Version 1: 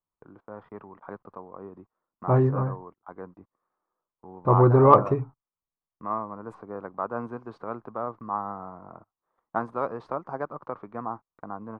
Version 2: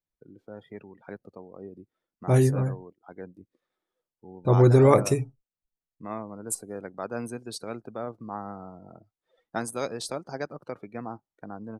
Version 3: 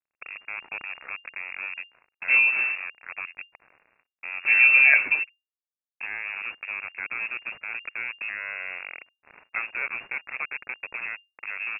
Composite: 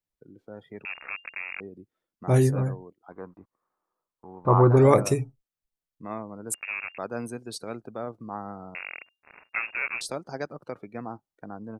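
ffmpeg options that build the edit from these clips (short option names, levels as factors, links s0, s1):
-filter_complex "[2:a]asplit=3[s0][s1][s2];[1:a]asplit=5[s3][s4][s5][s6][s7];[s3]atrim=end=0.852[s8];[s0]atrim=start=0.848:end=1.602[s9];[s4]atrim=start=1.598:end=3.122[s10];[0:a]atrim=start=3.118:end=4.772[s11];[s5]atrim=start=4.768:end=6.542[s12];[s1]atrim=start=6.538:end=6.982[s13];[s6]atrim=start=6.978:end=8.752[s14];[s2]atrim=start=8.748:end=10.012[s15];[s7]atrim=start=10.008[s16];[s8][s9]acrossfade=d=0.004:c1=hsin:c2=hsin[s17];[s17][s10]acrossfade=d=0.004:c1=hsin:c2=hsin[s18];[s18][s11]acrossfade=d=0.004:c1=hsin:c2=hsin[s19];[s19][s12]acrossfade=d=0.004:c1=hsin:c2=hsin[s20];[s20][s13]acrossfade=d=0.004:c1=hsin:c2=hsin[s21];[s21][s14]acrossfade=d=0.004:c1=hsin:c2=hsin[s22];[s22][s15]acrossfade=d=0.004:c1=hsin:c2=hsin[s23];[s23][s16]acrossfade=d=0.004:c1=hsin:c2=hsin"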